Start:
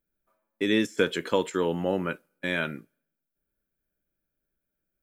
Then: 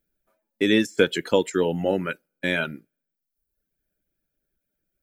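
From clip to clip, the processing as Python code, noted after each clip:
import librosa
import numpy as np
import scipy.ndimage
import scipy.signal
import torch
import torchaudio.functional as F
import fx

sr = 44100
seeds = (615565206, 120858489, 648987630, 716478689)

y = fx.dereverb_blind(x, sr, rt60_s=0.85)
y = fx.peak_eq(y, sr, hz=1100.0, db=-10.5, octaves=0.37)
y = F.gain(torch.from_numpy(y), 5.5).numpy()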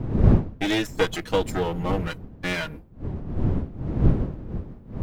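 y = fx.lower_of_two(x, sr, delay_ms=6.3)
y = fx.dmg_wind(y, sr, seeds[0], corner_hz=170.0, level_db=-23.0)
y = F.gain(torch.from_numpy(y), -2.0).numpy()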